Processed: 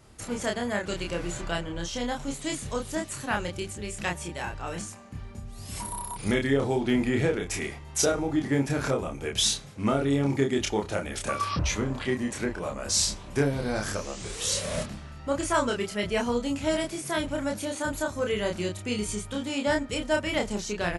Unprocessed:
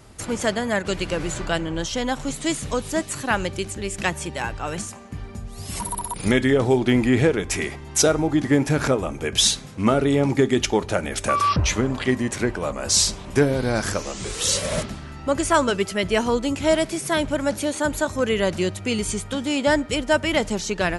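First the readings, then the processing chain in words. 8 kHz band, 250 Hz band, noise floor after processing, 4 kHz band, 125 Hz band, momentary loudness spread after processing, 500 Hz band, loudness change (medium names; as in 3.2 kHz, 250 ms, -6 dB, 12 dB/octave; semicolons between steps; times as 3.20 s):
-6.0 dB, -6.0 dB, -42 dBFS, -6.5 dB, -6.0 dB, 9 LU, -6.5 dB, -6.5 dB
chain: doubling 29 ms -3 dB; trim -8 dB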